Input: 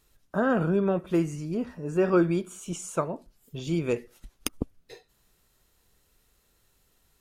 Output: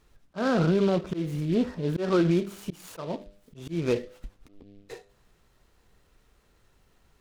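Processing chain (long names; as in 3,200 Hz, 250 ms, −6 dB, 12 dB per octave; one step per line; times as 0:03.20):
low-pass filter 2,600 Hz 6 dB per octave
hum removal 100.5 Hz, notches 7
volume swells 236 ms
brickwall limiter −21 dBFS, peak gain reduction 7.5 dB
short delay modulated by noise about 2,800 Hz, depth 0.034 ms
level +6 dB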